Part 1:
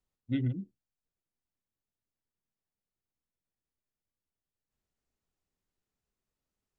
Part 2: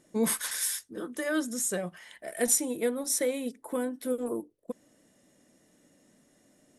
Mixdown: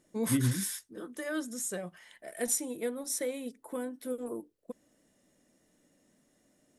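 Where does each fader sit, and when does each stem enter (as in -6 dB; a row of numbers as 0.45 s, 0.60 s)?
+2.5 dB, -5.5 dB; 0.00 s, 0.00 s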